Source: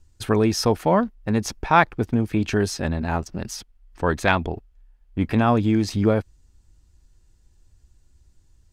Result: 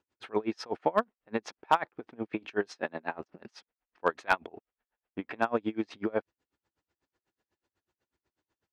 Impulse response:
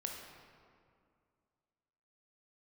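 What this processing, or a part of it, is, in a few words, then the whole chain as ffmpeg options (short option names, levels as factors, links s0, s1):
helicopter radio: -filter_complex "[0:a]asettb=1/sr,asplit=3[s0][s1][s2];[s0]atrim=end=2.664[s3];[s1]atrim=start=2.66:end=3.14,asetpts=PTS-STARTPTS,afade=t=in:d=0.004:c=qsin,afade=t=out:st=0.476:d=0.004:c=qsin,highpass=150[s4];[s2]atrim=start=3.136[s5];[s3][s4]acrossfade=d=0.004:c1=hsin:c2=qsin[s6];[s6][s5]acrossfade=d=0.004:c1=qsin:c2=hsin,highpass=380,lowpass=2600,aeval=exprs='val(0)*pow(10,-30*(0.5-0.5*cos(2*PI*8.1*n/s))/20)':c=same,asoftclip=type=hard:threshold=0.266"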